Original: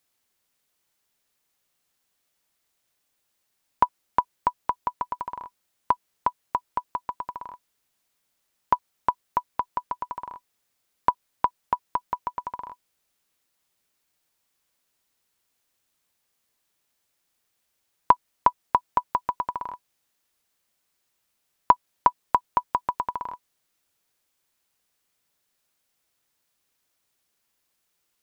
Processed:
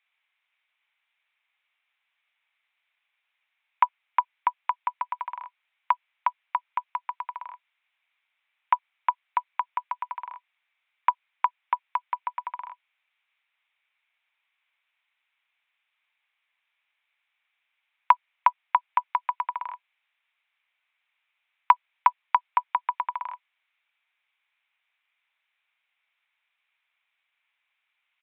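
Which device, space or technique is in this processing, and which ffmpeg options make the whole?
musical greeting card: -af "aresample=8000,aresample=44100,highpass=f=810:w=0.5412,highpass=f=810:w=1.3066,equalizer=f=2300:t=o:w=0.5:g=11.5"

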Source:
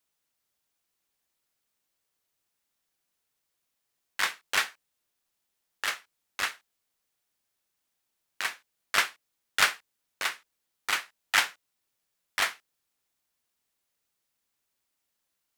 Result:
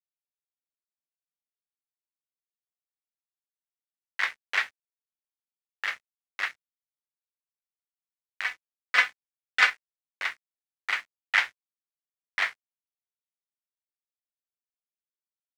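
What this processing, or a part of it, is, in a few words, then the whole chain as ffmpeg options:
pocket radio on a weak battery: -filter_complex "[0:a]asettb=1/sr,asplit=3[s0][s1][s2];[s0]atrim=end=8.464[s3];[s1]atrim=start=8.46:end=9.7,asetpts=PTS-STARTPTS,afade=t=in:d=0.004:c=qsin,afade=t=out:st=1.236:d=0.004:c=qsin,aecho=1:1:4:0.98,atrim=end_sample=54684[s4];[s2]atrim=start=9.696[s5];[s3][s4]acrossfade=d=0.004:c1=hsin:c2=qsin[s6];[s6][s5]acrossfade=d=0.004:c1=qsin:c2=hsin,highpass=390,lowpass=4300,aeval=exprs='sgn(val(0))*max(abs(val(0))-0.00473,0)':c=same,equalizer=f=2000:t=o:w=0.6:g=8.5,volume=0.668"

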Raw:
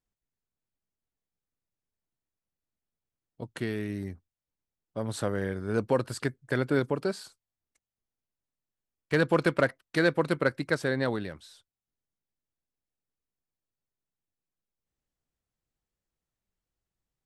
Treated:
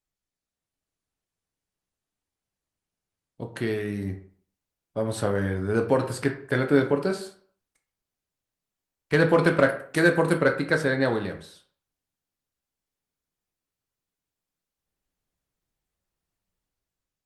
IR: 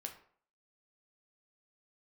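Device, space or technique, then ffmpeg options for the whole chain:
speakerphone in a meeting room: -filter_complex "[0:a]asplit=3[s0][s1][s2];[s0]afade=t=out:st=9.68:d=0.02[s3];[s1]highshelf=f=5900:t=q:w=1.5:g=6.5,afade=t=in:st=9.68:d=0.02,afade=t=out:st=10.32:d=0.02[s4];[s2]afade=t=in:st=10.32:d=0.02[s5];[s3][s4][s5]amix=inputs=3:normalize=0[s6];[1:a]atrim=start_sample=2205[s7];[s6][s7]afir=irnorm=-1:irlink=0,dynaudnorm=f=120:g=9:m=2.11,volume=1.19" -ar 48000 -c:a libopus -b:a 32k

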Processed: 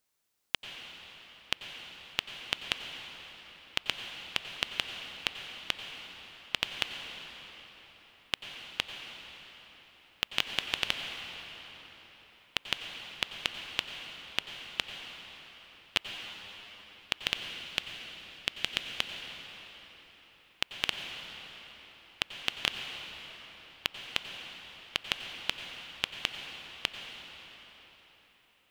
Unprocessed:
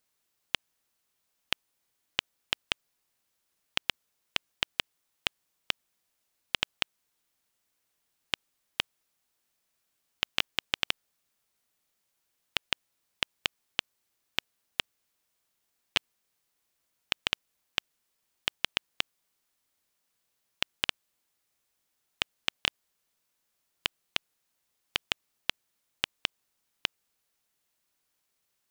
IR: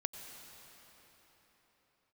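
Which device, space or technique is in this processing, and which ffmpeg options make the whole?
cathedral: -filter_complex "[0:a]asettb=1/sr,asplit=3[s0][s1][s2];[s0]atrim=end=17.254[s3];[s1]atrim=start=17.25:end=18.91,asetpts=PTS-STARTPTS,afade=t=in:d=0.004:c=qsin,afade=t=out:st=1.656:d=0.004:c=qsin,equalizer=f=950:t=o:w=0.97:g=-5[s4];[s2]atrim=start=18.906[s5];[s3][s4]acrossfade=d=0.004:c1=hsin:c2=qsin[s6];[s6][s5]acrossfade=d=0.004:c1=qsin:c2=hsin[s7];[1:a]atrim=start_sample=2205[s8];[s7][s8]afir=irnorm=-1:irlink=0"

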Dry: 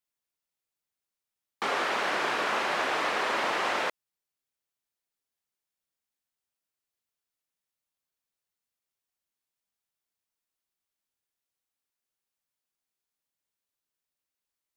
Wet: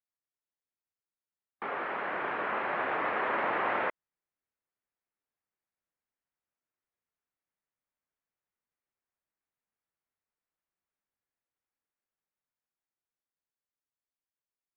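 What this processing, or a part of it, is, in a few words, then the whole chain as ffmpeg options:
action camera in a waterproof case: -af "lowpass=f=2200:w=0.5412,lowpass=f=2200:w=1.3066,dynaudnorm=f=250:g=21:m=2.37,volume=0.422" -ar 48000 -c:a aac -b:a 48k

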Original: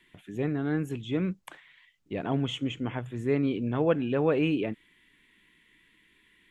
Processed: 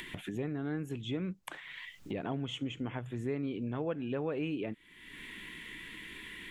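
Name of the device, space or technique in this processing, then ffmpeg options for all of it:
upward and downward compression: -af "acompressor=mode=upward:threshold=0.0224:ratio=2.5,acompressor=threshold=0.0158:ratio=3,volume=1.12"

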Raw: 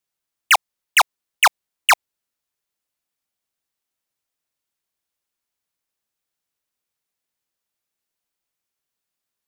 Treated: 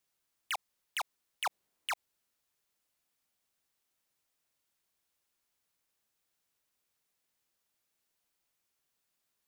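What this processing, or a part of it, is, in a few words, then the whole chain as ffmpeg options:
de-esser from a sidechain: -filter_complex "[0:a]asettb=1/sr,asplit=3[s0][s1][s2];[s0]atrim=end=1.454[s3];[s1]atrim=start=1.45:end=1.92,asetpts=PTS-STARTPTS,afade=t=in:d=0.004:c=qsin,afade=t=out:st=0.466:d=0.004:c=qsin,equalizer=f=350:w=0.37:g=7[s4];[s2]atrim=start=1.916[s5];[s3][s4]acrossfade=d=0.004:c1=hsin:c2=qsin[s6];[s6][s5]acrossfade=d=0.004:c1=qsin:c2=hsin,asplit=2[s7][s8];[s8]highpass=5600,apad=whole_len=417769[s9];[s7][s9]sidechaincompress=threshold=0.00708:ratio=8:attack=1.8:release=23,volume=1.19"

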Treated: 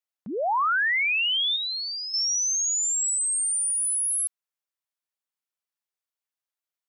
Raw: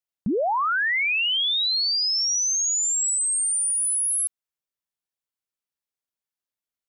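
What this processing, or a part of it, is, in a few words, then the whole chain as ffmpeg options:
filter by subtraction: -filter_complex "[0:a]asettb=1/sr,asplit=3[s0][s1][s2];[s0]atrim=end=1.564[s3];[s1]atrim=start=1.56:end=2.14,asetpts=PTS-STARTPTS,afade=t=in:d=0.004:c=qsin,afade=t=out:st=0.576:d=0.004:c=qsin,lowpass=3300[s4];[s2]atrim=start=2.136[s5];[s3][s4]acrossfade=d=0.004:c1=hsin:c2=qsin[s6];[s6][s5]acrossfade=d=0.004:c1=qsin:c2=hsin,asplit=2[s7][s8];[s8]lowpass=980,volume=-1[s9];[s7][s9]amix=inputs=2:normalize=0,volume=0.794"

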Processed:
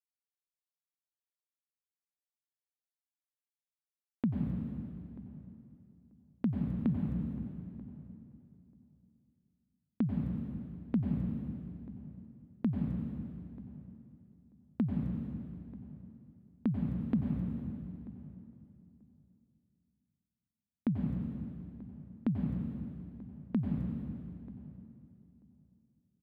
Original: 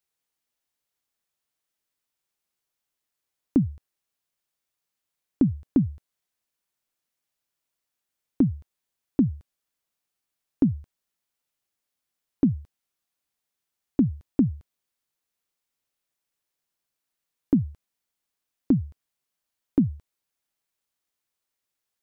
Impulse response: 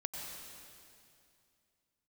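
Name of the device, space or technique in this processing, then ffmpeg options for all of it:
slowed and reverbed: -filter_complex "[0:a]aemphasis=mode=production:type=cd,agate=range=0.0708:threshold=0.0126:ratio=16:detection=peak,asetrate=37044,aresample=44100[s0];[1:a]atrim=start_sample=2205[s1];[s0][s1]afir=irnorm=-1:irlink=0,asplit=2[s2][s3];[s3]adelay=937,lowpass=f=1100:p=1,volume=0.141,asplit=2[s4][s5];[s5]adelay=937,lowpass=f=1100:p=1,volume=0.16[s6];[s2][s4][s6]amix=inputs=3:normalize=0,volume=0.398"

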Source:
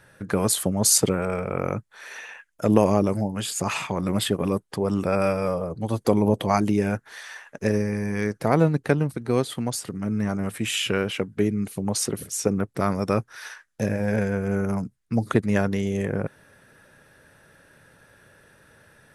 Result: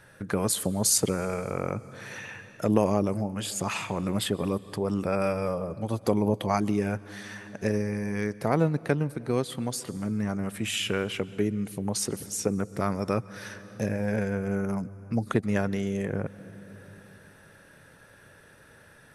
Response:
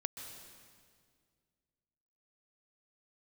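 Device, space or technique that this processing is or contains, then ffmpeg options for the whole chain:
compressed reverb return: -filter_complex "[0:a]asplit=2[s0][s1];[1:a]atrim=start_sample=2205[s2];[s1][s2]afir=irnorm=-1:irlink=0,acompressor=threshold=0.0141:ratio=5,volume=1.12[s3];[s0][s3]amix=inputs=2:normalize=0,volume=0.531"

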